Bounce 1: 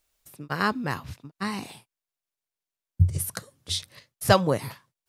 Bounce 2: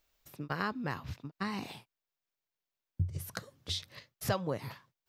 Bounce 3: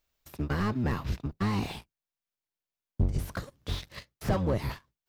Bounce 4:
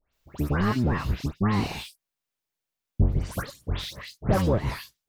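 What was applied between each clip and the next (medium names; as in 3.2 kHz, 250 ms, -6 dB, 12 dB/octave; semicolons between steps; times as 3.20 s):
peaking EQ 9.6 kHz -13 dB 0.71 oct; compression 2.5:1, threshold -35 dBFS, peak gain reduction 15 dB
octave divider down 1 oct, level 0 dB; waveshaping leveller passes 2; slew-rate limiter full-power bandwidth 40 Hz
phase dispersion highs, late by 134 ms, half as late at 2.3 kHz; trim +5 dB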